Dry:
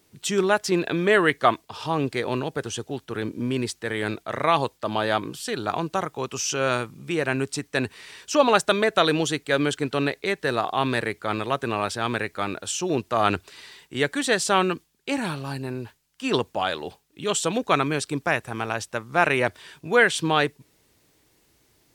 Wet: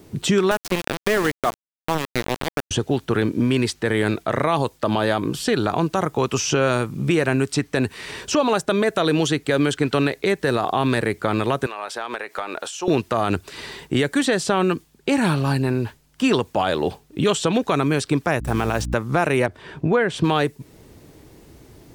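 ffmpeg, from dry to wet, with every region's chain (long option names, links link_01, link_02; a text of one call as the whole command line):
ffmpeg -i in.wav -filter_complex "[0:a]asettb=1/sr,asplit=3[link_01][link_02][link_03];[link_01]atrim=end=0.514[link_04];[link_02]atrim=start=0.51:end=2.71,asetpts=PTS-STARTPTS,afade=type=in:duration=0.004:curve=qsin,afade=type=out:start_time=2.196:duration=0.004:curve=qsin,highpass=frequency=480:poles=1,aeval=exprs='val(0)*gte(abs(val(0)),0.0794)':channel_layout=same[link_05];[link_03]atrim=start=2.706[link_06];[link_04][link_05]acrossfade=duration=0.004:curve1=hsin:curve2=qsin[link_07];[link_07][link_06]acrossfade=duration=0.004:curve1=qsin:curve2=hsin,asettb=1/sr,asplit=3[link_08][link_09][link_10];[link_08]atrim=end=11.664[link_11];[link_09]atrim=start=11.66:end=12.88,asetpts=PTS-STARTPTS,afade=type=in:duration=0.004:curve=qsin,afade=type=out:start_time=1.216:duration=0.004:curve=qsin,highpass=740,acompressor=threshold=-36dB:ratio=10:attack=3.2:release=140:knee=1:detection=peak[link_12];[link_10]atrim=start=12.876[link_13];[link_11][link_12]acrossfade=duration=0.004:curve1=hsin:curve2=qsin[link_14];[link_14][link_13]acrossfade=duration=0.004:curve1=qsin:curve2=hsin,asettb=1/sr,asplit=3[link_15][link_16][link_17];[link_15]atrim=end=18.404[link_18];[link_16]atrim=start=18.4:end=18.94,asetpts=PTS-STARTPTS,afade=type=in:duration=0.004:curve=qsin,afade=type=out:start_time=0.536:duration=0.004:curve=qsin,acrusher=bits=6:mix=0:aa=0.5,aeval=exprs='val(0)+0.00891*(sin(2*PI*60*n/s)+sin(2*PI*2*60*n/s)/2+sin(2*PI*3*60*n/s)/3+sin(2*PI*4*60*n/s)/4+sin(2*PI*5*60*n/s)/5)':channel_layout=same[link_19];[link_17]atrim=start=18.936[link_20];[link_18][link_19]acrossfade=duration=0.004:curve1=hsin:curve2=qsin[link_21];[link_21][link_20]acrossfade=duration=0.004:curve1=qsin:curve2=hsin,asettb=1/sr,asplit=3[link_22][link_23][link_24];[link_22]atrim=end=19.464[link_25];[link_23]atrim=start=19.46:end=20.24,asetpts=PTS-STARTPTS,afade=type=in:duration=0.004:curve=qsin,afade=type=out:start_time=0.776:duration=0.004:curve=qsin,lowpass=frequency=1400:poles=1,acompressor=threshold=-28dB:ratio=1.5:attack=3.2:release=140:knee=1:detection=peak[link_26];[link_24]atrim=start=20.236[link_27];[link_25][link_26]acrossfade=duration=0.004:curve1=hsin:curve2=qsin[link_28];[link_28][link_27]acrossfade=duration=0.004:curve1=qsin:curve2=hsin,tiltshelf=frequency=920:gain=7,acrossover=split=1100|5500[link_29][link_30][link_31];[link_29]acompressor=threshold=-33dB:ratio=4[link_32];[link_30]acompressor=threshold=-38dB:ratio=4[link_33];[link_31]acompressor=threshold=-48dB:ratio=4[link_34];[link_32][link_33][link_34]amix=inputs=3:normalize=0,alimiter=level_in=21.5dB:limit=-1dB:release=50:level=0:latency=1,volume=-7.5dB" out.wav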